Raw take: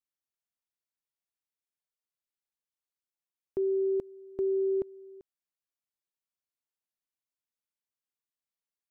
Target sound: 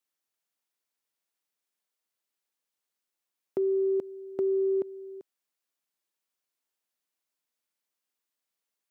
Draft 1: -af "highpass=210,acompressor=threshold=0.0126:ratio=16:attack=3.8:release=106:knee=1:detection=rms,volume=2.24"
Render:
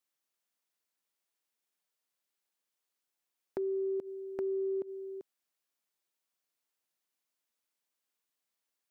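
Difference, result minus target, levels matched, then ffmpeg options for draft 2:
compression: peak gain reduction +7 dB
-af "highpass=210,acompressor=threshold=0.0299:ratio=16:attack=3.8:release=106:knee=1:detection=rms,volume=2.24"

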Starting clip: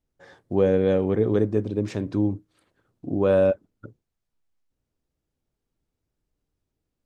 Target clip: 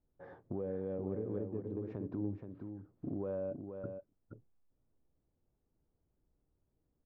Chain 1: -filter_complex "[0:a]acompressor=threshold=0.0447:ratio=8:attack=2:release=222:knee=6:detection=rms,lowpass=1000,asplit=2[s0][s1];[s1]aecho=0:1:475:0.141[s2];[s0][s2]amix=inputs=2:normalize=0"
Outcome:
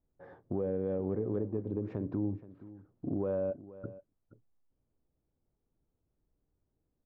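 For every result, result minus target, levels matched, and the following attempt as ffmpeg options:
echo-to-direct -10 dB; compression: peak gain reduction -5.5 dB
-filter_complex "[0:a]acompressor=threshold=0.0447:ratio=8:attack=2:release=222:knee=6:detection=rms,lowpass=1000,asplit=2[s0][s1];[s1]aecho=0:1:475:0.447[s2];[s0][s2]amix=inputs=2:normalize=0"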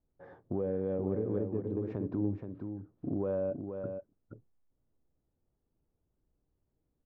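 compression: peak gain reduction -5.5 dB
-filter_complex "[0:a]acompressor=threshold=0.0211:ratio=8:attack=2:release=222:knee=6:detection=rms,lowpass=1000,asplit=2[s0][s1];[s1]aecho=0:1:475:0.447[s2];[s0][s2]amix=inputs=2:normalize=0"

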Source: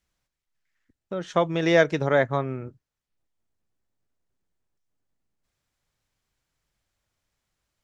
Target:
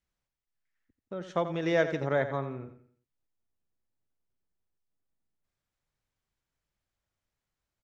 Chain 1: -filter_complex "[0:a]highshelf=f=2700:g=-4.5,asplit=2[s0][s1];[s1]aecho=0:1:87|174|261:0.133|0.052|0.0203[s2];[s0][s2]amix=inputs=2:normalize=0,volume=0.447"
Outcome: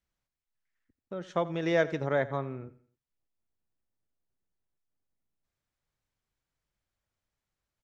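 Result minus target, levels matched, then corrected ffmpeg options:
echo-to-direct -6.5 dB
-filter_complex "[0:a]highshelf=f=2700:g=-4.5,asplit=2[s0][s1];[s1]aecho=0:1:87|174|261|348:0.282|0.11|0.0429|0.0167[s2];[s0][s2]amix=inputs=2:normalize=0,volume=0.447"

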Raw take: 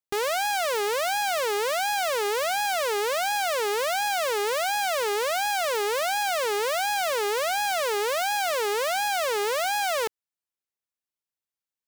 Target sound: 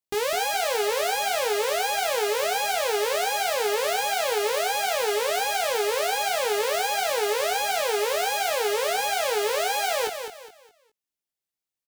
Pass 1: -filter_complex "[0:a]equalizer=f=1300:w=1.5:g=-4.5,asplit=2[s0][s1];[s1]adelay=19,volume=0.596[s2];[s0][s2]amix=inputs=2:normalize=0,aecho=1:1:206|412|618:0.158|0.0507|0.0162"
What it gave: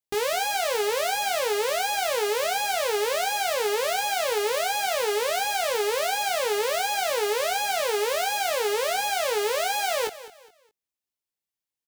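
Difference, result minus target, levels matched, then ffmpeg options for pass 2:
echo-to-direct -8 dB
-filter_complex "[0:a]equalizer=f=1300:w=1.5:g=-4.5,asplit=2[s0][s1];[s1]adelay=19,volume=0.596[s2];[s0][s2]amix=inputs=2:normalize=0,aecho=1:1:206|412|618|824:0.398|0.127|0.0408|0.013"

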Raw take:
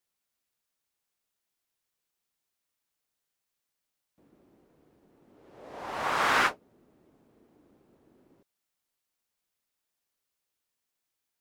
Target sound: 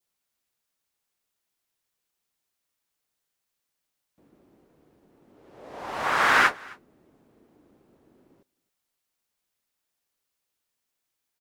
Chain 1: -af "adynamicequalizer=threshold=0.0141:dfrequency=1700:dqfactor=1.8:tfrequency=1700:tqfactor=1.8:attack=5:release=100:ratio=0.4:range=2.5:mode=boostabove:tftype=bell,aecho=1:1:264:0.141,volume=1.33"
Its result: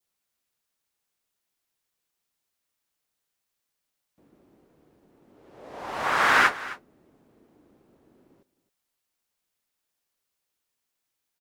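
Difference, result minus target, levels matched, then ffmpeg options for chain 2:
echo-to-direct +7.5 dB
-af "adynamicequalizer=threshold=0.0141:dfrequency=1700:dqfactor=1.8:tfrequency=1700:tqfactor=1.8:attack=5:release=100:ratio=0.4:range=2.5:mode=boostabove:tftype=bell,aecho=1:1:264:0.0596,volume=1.33"

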